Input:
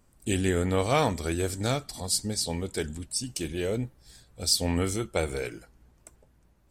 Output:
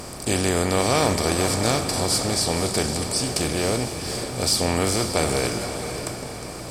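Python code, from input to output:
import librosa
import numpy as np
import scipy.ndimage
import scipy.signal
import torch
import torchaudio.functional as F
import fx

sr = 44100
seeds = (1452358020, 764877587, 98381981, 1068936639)

y = fx.bin_compress(x, sr, power=0.4)
y = fx.echo_diffused(y, sr, ms=525, feedback_pct=43, wet_db=-8.0)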